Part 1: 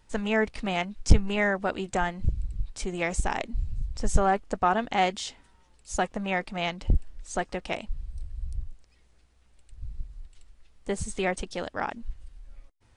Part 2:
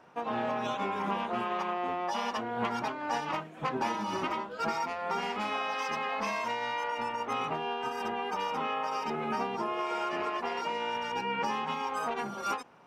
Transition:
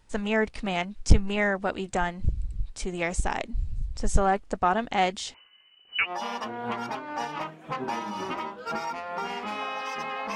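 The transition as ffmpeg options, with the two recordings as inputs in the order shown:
-filter_complex "[0:a]asettb=1/sr,asplit=3[a][b][c];[a]atrim=end=5.344[d];[b]atrim=start=5.34:end=6.12,asetpts=PTS-STARTPTS,afade=t=in:d=0.004:c=qsin,afade=t=out:st=0.776:d=0.004:c=qsin,lowpass=f=2.6k:t=q:w=0.5098,lowpass=f=2.6k:t=q:w=0.6013,lowpass=f=2.6k:t=q:w=0.9,lowpass=f=2.6k:t=q:w=2.563,afreqshift=-3000[e];[c]atrim=start=6.116[f];[d][e]acrossfade=d=0.004:c1=hsin:c2=qsin[g];[g][f]acrossfade=d=0.004:c1=qsin:c2=hsin,apad=whole_dur=10.35,atrim=end=10.35,atrim=end=6.12,asetpts=PTS-STARTPTS[h];[1:a]atrim=start=1.97:end=6.28,asetpts=PTS-STARTPTS[i];[h][i]acrossfade=d=0.08:c1=tri:c2=tri"

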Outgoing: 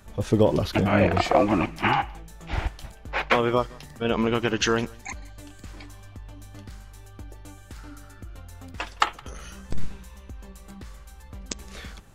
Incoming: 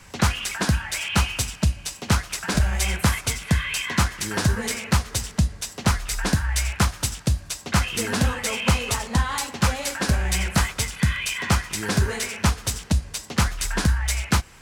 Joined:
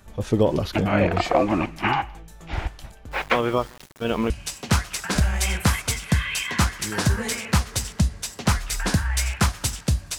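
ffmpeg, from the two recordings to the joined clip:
-filter_complex "[0:a]asettb=1/sr,asplit=3[a][b][c];[a]atrim=end=3.114[d];[b]atrim=start=3.11:end=4.3,asetpts=PTS-STARTPTS,afade=t=in:d=0.004:c=qsin,afade=t=out:st=1.186:d=0.004:c=qsin,aeval=exprs='val(0)*gte(abs(val(0)),0.0126)':c=same[e];[c]atrim=start=4.296[f];[d][e]acrossfade=d=0.004:c1=hsin:c2=qsin[g];[g][f]acrossfade=d=0.004:c1=qsin:c2=hsin,apad=whole_dur=10.18,atrim=end=10.18,atrim=end=4.302[h];[1:a]atrim=start=1.688:end=7.57[i];[h][i]acrossfade=d=0.004:c1=hsin:c2=hsin"

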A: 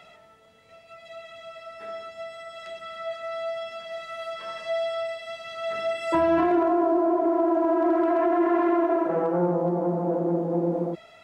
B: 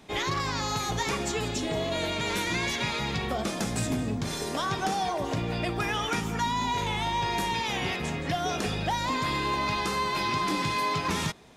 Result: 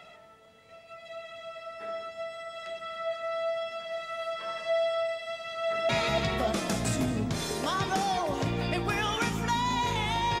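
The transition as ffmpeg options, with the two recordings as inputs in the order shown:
-filter_complex "[0:a]apad=whole_dur=10.4,atrim=end=10.4,atrim=end=5.892[a];[1:a]atrim=start=2.798:end=7.31[b];[a][b]acrossfade=d=0.004:c1=hsin:c2=hsin,asplit=2[c][d];[d]afade=t=in:st=5.58:d=0.01,afade=t=out:st=5.89:d=0.01,aecho=0:1:290|580|870|1160|1450|1740|2030|2320|2610:0.841395|0.504837|0.302902|0.181741|0.109045|0.0654269|0.0392561|0.0235537|0.0141322[e];[c][e]amix=inputs=2:normalize=0"

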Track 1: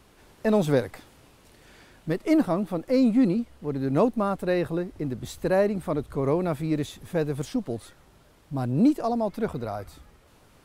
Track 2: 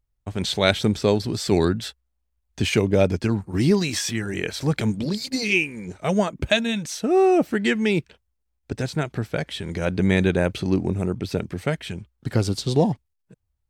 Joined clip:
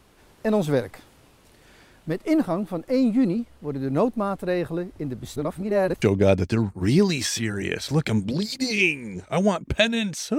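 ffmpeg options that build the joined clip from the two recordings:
-filter_complex "[0:a]apad=whole_dur=10.38,atrim=end=10.38,asplit=2[a][b];[a]atrim=end=5.362[c];[b]atrim=start=5.358:end=6.022,asetpts=PTS-STARTPTS,areverse[d];[1:a]atrim=start=2.738:end=7.1[e];[c][d]acrossfade=d=0.004:c1=hsin:c2=hsin[f];[f][e]acrossfade=d=0.004:c1=hsin:c2=hsin"

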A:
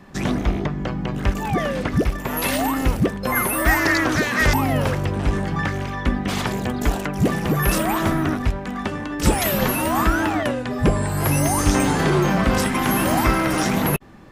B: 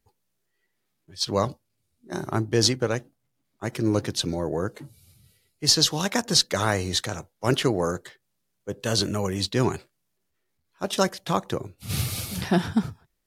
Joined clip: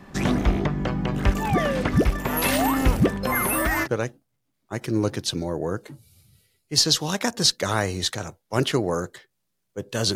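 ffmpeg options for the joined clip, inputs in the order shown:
-filter_complex "[0:a]asettb=1/sr,asplit=3[a][b][c];[a]atrim=end=3.124[d];[b]atrim=start=3.12:end=3.88,asetpts=PTS-STARTPTS,afade=t=in:d=0.004:c=qsin,afade=t=out:st=0.756:d=0.004:c=qsin,acompressor=threshold=-18dB:ratio=10:attack=3.2:release=140:knee=1:detection=peak[e];[c]atrim=start=3.876[f];[d][e]acrossfade=d=0.004:c1=hsin:c2=qsin[g];[g][f]acrossfade=d=0.004:c1=qsin:c2=hsin,apad=whole_dur=10.15,atrim=end=10.15,atrim=end=3.88,asetpts=PTS-STARTPTS[h];[1:a]atrim=start=2.73:end=9.06,asetpts=PTS-STARTPTS[i];[h][i]acrossfade=d=0.06:c1=tri:c2=tri"

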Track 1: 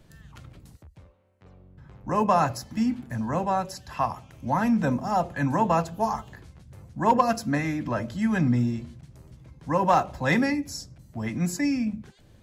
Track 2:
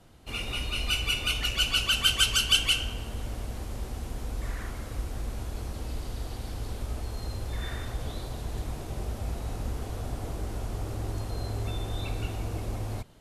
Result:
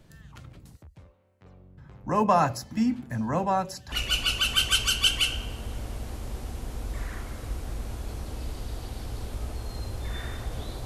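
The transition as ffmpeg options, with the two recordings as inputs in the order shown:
-filter_complex "[0:a]apad=whole_dur=10.85,atrim=end=10.85,atrim=end=3.922[a];[1:a]atrim=start=1.398:end=8.33[b];[a][b]acrossfade=d=0.004:c1=hsin:c2=hsin"

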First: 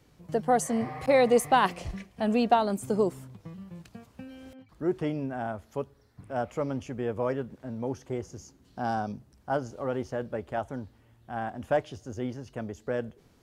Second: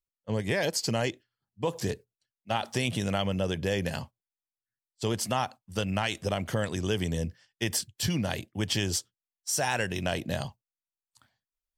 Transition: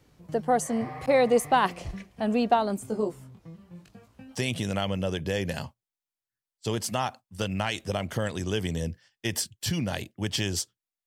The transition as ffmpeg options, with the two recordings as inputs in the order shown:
-filter_complex "[0:a]asettb=1/sr,asplit=3[a][b][c];[a]atrim=end=2.834[d];[b]atrim=start=2.83:end=4.36,asetpts=PTS-STARTPTS,afade=t=in:d=0.004:c=qsin,afade=t=out:st=1.526:d=0.004:c=qsin,flanger=delay=18:depth=6:speed=0.72[e];[c]atrim=start=4.356[f];[d][e]acrossfade=d=0.004:c1=hsin:c2=qsin[g];[g][f]acrossfade=d=0.004:c1=qsin:c2=hsin,apad=whole_dur=11.06,atrim=end=11.06,atrim=end=4.36,asetpts=PTS-STARTPTS[h];[1:a]atrim=start=2.67:end=9.43,asetpts=PTS-STARTPTS[i];[h][i]acrossfade=d=0.06:c1=tri:c2=tri"

